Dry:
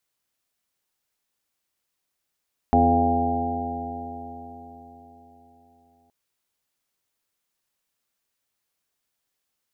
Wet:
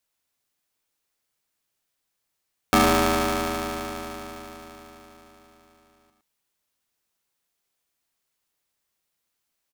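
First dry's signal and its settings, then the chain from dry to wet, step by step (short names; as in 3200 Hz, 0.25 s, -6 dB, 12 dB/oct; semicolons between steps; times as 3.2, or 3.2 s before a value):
stretched partials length 3.37 s, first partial 82.9 Hz, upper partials -11/3.5/-7.5/-3/-10/-11/3/4 dB, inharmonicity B 0.0019, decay 4.33 s, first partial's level -22.5 dB
on a send: echo 0.109 s -7 dB; on the sum: polarity switched at an audio rate 490 Hz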